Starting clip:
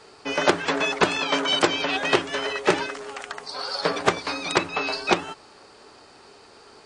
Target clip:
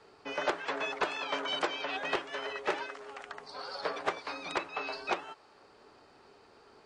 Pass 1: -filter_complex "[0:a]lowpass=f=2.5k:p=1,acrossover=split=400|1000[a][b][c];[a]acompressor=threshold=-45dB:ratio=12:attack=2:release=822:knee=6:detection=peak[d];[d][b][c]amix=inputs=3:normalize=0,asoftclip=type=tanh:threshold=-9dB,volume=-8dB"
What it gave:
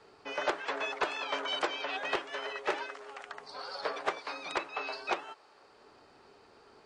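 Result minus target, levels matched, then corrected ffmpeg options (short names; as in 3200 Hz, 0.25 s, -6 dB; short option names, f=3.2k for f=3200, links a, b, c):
compressor: peak gain reduction +8 dB
-filter_complex "[0:a]lowpass=f=2.5k:p=1,acrossover=split=400|1000[a][b][c];[a]acompressor=threshold=-36dB:ratio=12:attack=2:release=822:knee=6:detection=peak[d];[d][b][c]amix=inputs=3:normalize=0,asoftclip=type=tanh:threshold=-9dB,volume=-8dB"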